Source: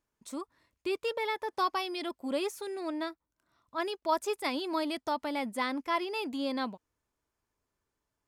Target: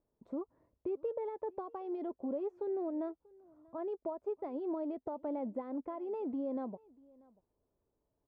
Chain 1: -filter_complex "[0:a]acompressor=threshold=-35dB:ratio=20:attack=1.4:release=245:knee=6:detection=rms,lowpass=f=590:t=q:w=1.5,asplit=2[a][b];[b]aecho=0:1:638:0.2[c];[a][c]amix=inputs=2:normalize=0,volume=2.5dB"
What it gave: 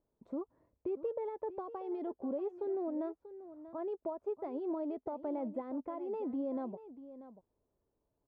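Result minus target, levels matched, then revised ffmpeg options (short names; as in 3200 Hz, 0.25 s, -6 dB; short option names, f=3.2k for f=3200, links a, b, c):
echo-to-direct +11 dB
-filter_complex "[0:a]acompressor=threshold=-35dB:ratio=20:attack=1.4:release=245:knee=6:detection=rms,lowpass=f=590:t=q:w=1.5,asplit=2[a][b];[b]aecho=0:1:638:0.0562[c];[a][c]amix=inputs=2:normalize=0,volume=2.5dB"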